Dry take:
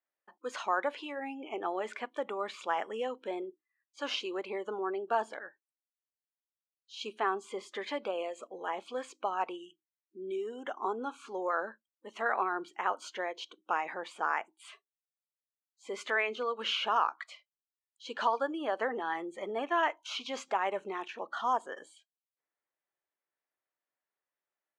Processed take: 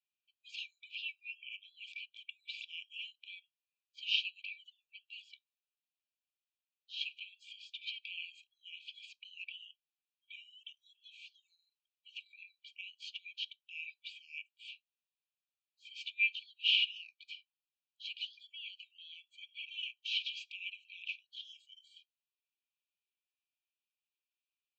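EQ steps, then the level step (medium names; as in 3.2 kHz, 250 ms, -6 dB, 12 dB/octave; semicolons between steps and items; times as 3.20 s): brick-wall FIR high-pass 2.3 kHz; brick-wall FIR low-pass 8.5 kHz; distance through air 360 m; +11.5 dB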